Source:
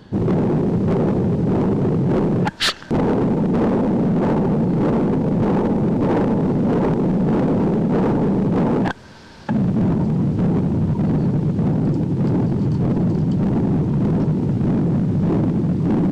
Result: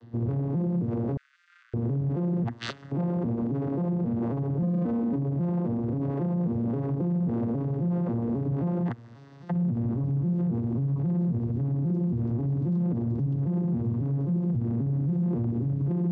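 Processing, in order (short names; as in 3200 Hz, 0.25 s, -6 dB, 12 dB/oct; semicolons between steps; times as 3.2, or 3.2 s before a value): arpeggiated vocoder minor triad, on A#2, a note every 0.269 s; 1.17–1.74 steep high-pass 1400 Hz 72 dB/oct; 4.62–5.16 comb 4 ms, depth 84%; limiter -18.5 dBFS, peak gain reduction 10 dB; gain -2.5 dB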